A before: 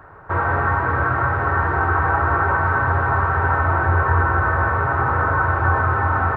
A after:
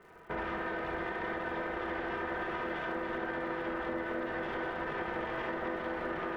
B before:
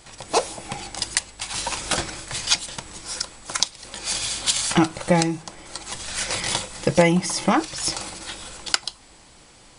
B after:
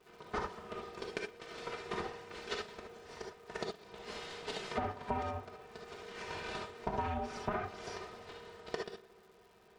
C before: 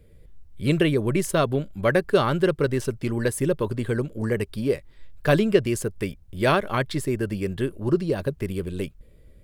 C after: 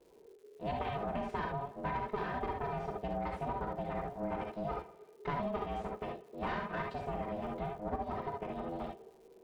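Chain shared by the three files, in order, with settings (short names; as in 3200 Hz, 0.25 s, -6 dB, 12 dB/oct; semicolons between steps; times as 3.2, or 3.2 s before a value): minimum comb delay 3.6 ms; tape spacing loss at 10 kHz 32 dB; ring modulator 420 Hz; bell 110 Hz -15 dB 0.35 oct; on a send: tape echo 0.117 s, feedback 53%, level -20 dB, low-pass 4300 Hz; on the sum: non-linear reverb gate 90 ms rising, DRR 1 dB; compressor, threshold -26 dBFS; crackle 280/s -51 dBFS; gain -6.5 dB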